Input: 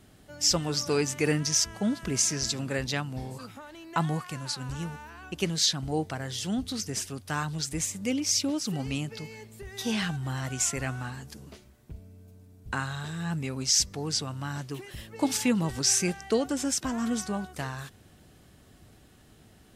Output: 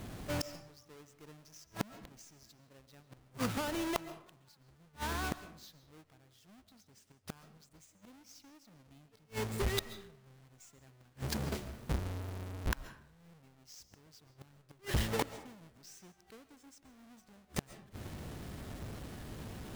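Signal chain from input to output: half-waves squared off; flipped gate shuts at -28 dBFS, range -39 dB; digital reverb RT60 0.64 s, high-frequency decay 0.6×, pre-delay 95 ms, DRR 13 dB; gain +5 dB

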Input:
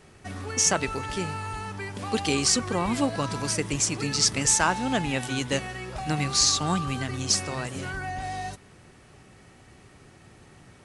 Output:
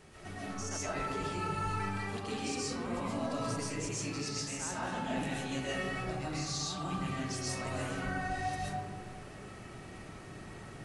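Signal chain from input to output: reverse; compressor 12:1, threshold -37 dBFS, peak gain reduction 20 dB; reverse; reverb RT60 1.5 s, pre-delay 90 ms, DRR -8 dB; gain -4 dB

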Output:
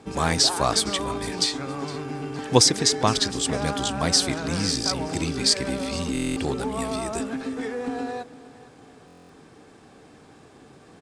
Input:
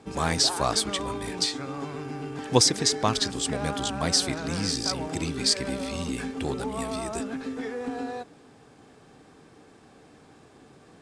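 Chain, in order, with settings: on a send: feedback echo 0.462 s, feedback 34%, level -19 dB; on the sum: stuck buffer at 6.13/9.06, samples 1024, times 9; gain +3 dB

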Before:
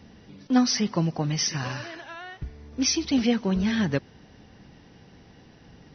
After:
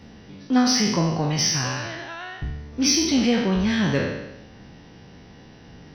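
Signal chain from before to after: spectral trails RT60 0.93 s; in parallel at -7.5 dB: soft clip -26 dBFS, distortion -8 dB

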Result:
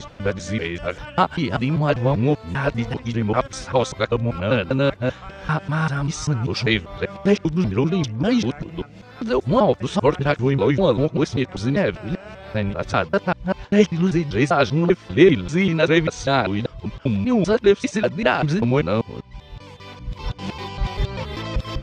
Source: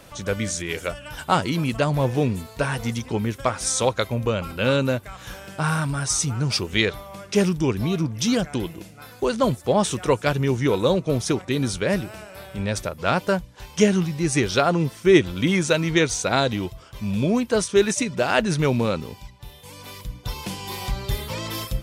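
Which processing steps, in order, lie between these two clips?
local time reversal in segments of 0.196 s; air absorption 170 m; gain +3 dB

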